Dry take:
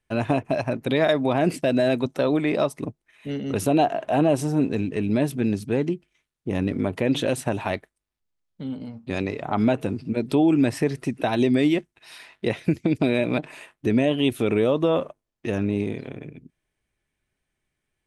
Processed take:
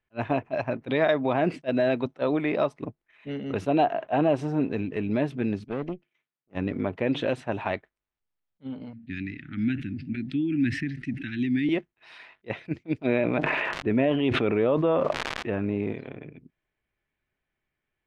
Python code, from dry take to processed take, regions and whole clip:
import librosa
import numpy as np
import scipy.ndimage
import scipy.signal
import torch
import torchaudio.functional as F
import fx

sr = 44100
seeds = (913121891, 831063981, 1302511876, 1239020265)

y = fx.chain(x, sr, fx.highpass(hz=120.0, slope=24),
    fx.tube_stage(drive_db=21.0, bias=0.75), at=(5.64, 6.55))
y = fx.chain(y, sr, fx.ellip_bandstop(low_hz=290.0, high_hz=1700.0, order=3, stop_db=40),
    fx.high_shelf(hz=4000.0, db=-8.0),
    fx.sustainer(db_per_s=83.0), at=(8.93, 11.69))
y = fx.lowpass(y, sr, hz=2700.0, slope=12, at=(13.06, 15.91), fade=0.02)
y = fx.dmg_crackle(y, sr, seeds[0], per_s=170.0, level_db=-44.0, at=(13.06, 15.91), fade=0.02)
y = fx.sustainer(y, sr, db_per_s=20.0, at=(13.06, 15.91), fade=0.02)
y = scipy.signal.sosfilt(scipy.signal.butter(2, 2700.0, 'lowpass', fs=sr, output='sos'), y)
y = fx.low_shelf(y, sr, hz=470.0, db=-5.5)
y = fx.attack_slew(y, sr, db_per_s=530.0)